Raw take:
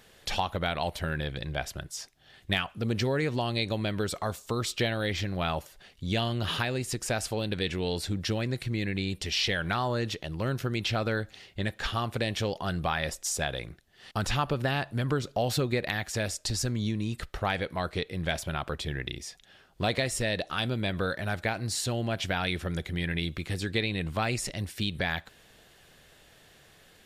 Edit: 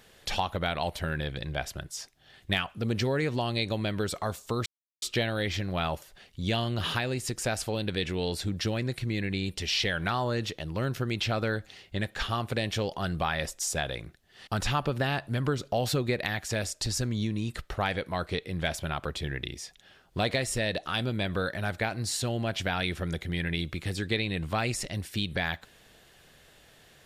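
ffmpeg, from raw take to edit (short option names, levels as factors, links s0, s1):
-filter_complex "[0:a]asplit=2[s0][s1];[s0]atrim=end=4.66,asetpts=PTS-STARTPTS,afade=t=out:st=4.656:d=0.004:c=hsin,apad=pad_dur=0.36[s2];[s1]atrim=start=4.66,asetpts=PTS-STARTPTS,afade=t=in:d=0.004:c=hsin[s3];[s2][s3]concat=n=2:v=0:a=1"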